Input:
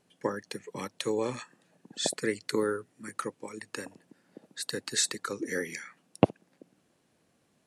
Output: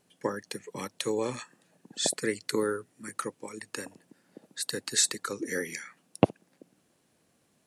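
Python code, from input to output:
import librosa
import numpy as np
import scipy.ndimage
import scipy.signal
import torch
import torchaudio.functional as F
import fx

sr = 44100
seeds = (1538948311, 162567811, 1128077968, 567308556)

y = fx.high_shelf(x, sr, hz=6800.0, db=6.5)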